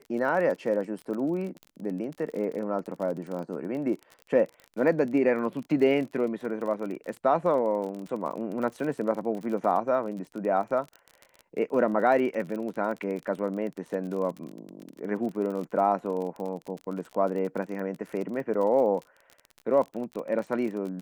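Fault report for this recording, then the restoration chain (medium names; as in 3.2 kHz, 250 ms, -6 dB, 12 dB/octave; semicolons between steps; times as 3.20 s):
crackle 35 per s -34 dBFS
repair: de-click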